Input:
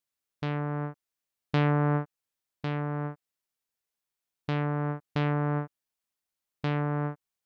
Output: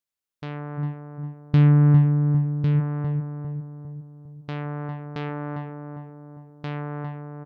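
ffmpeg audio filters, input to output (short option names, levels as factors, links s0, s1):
-filter_complex "[0:a]asplit=3[s0][s1][s2];[s0]afade=t=out:st=0.77:d=0.02[s3];[s1]asubboost=boost=12:cutoff=240,afade=t=in:st=0.77:d=0.02,afade=t=out:st=2.79:d=0.02[s4];[s2]afade=t=in:st=2.79:d=0.02[s5];[s3][s4][s5]amix=inputs=3:normalize=0,asplit=2[s6][s7];[s7]adelay=403,lowpass=f=970:p=1,volume=0.562,asplit=2[s8][s9];[s9]adelay=403,lowpass=f=970:p=1,volume=0.52,asplit=2[s10][s11];[s11]adelay=403,lowpass=f=970:p=1,volume=0.52,asplit=2[s12][s13];[s13]adelay=403,lowpass=f=970:p=1,volume=0.52,asplit=2[s14][s15];[s15]adelay=403,lowpass=f=970:p=1,volume=0.52,asplit=2[s16][s17];[s17]adelay=403,lowpass=f=970:p=1,volume=0.52,asplit=2[s18][s19];[s19]adelay=403,lowpass=f=970:p=1,volume=0.52[s20];[s6][s8][s10][s12][s14][s16][s18][s20]amix=inputs=8:normalize=0,volume=0.75"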